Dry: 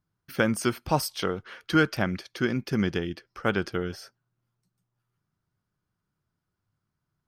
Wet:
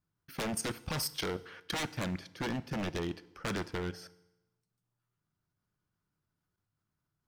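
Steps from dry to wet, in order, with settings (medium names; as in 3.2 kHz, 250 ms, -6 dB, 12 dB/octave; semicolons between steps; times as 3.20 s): wavefolder -24 dBFS; level held to a coarse grid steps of 17 dB; FDN reverb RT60 0.95 s, low-frequency decay 1.05×, high-frequency decay 0.9×, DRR 15.5 dB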